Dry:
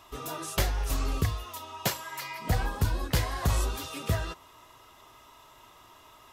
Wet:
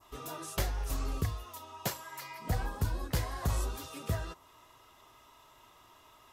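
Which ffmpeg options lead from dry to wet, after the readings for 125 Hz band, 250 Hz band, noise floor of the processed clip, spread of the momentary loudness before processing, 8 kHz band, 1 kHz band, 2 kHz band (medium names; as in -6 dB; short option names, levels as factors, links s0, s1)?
-5.0 dB, -5.0 dB, -61 dBFS, 9 LU, -5.5 dB, -5.5 dB, -7.0 dB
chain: -af "adynamicequalizer=threshold=0.00316:dfrequency=2900:dqfactor=0.84:tfrequency=2900:tqfactor=0.84:attack=5:release=100:ratio=0.375:range=2:mode=cutabove:tftype=bell,volume=0.562"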